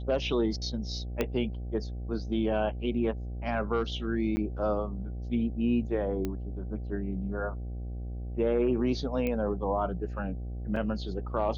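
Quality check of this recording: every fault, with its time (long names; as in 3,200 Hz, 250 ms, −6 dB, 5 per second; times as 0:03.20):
mains buzz 60 Hz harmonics 13 −36 dBFS
0:01.21: click −14 dBFS
0:04.36–0:04.37: drop-out 10 ms
0:06.25: click −19 dBFS
0:09.27: click −19 dBFS
0:10.76: drop-out 4.2 ms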